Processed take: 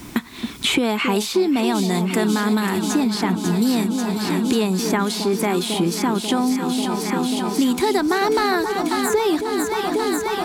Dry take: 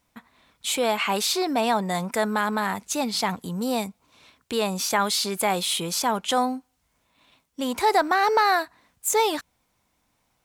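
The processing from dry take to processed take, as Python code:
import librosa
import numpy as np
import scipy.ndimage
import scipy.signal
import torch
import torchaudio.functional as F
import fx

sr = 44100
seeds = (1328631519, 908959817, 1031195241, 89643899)

y = fx.low_shelf_res(x, sr, hz=440.0, db=6.5, q=3.0)
y = fx.echo_alternate(y, sr, ms=270, hz=900.0, feedback_pct=86, wet_db=-9.5)
y = fx.band_squash(y, sr, depth_pct=100)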